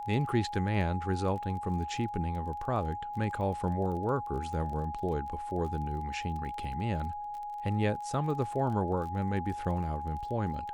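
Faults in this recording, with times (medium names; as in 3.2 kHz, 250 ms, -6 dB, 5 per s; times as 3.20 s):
crackle 26 per s -39 dBFS
whine 830 Hz -36 dBFS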